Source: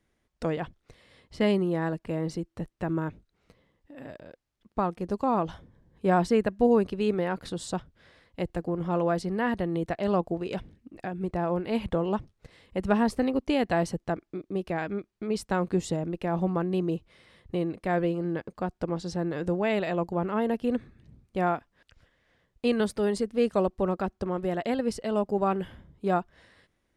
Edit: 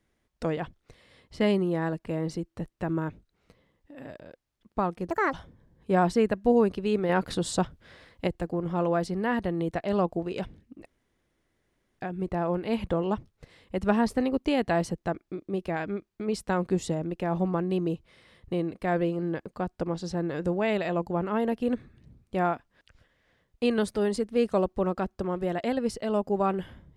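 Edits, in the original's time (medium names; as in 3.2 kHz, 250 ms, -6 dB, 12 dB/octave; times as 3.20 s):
5.10–5.48 s: speed 164%
7.24–8.42 s: gain +5.5 dB
11.01 s: insert room tone 1.13 s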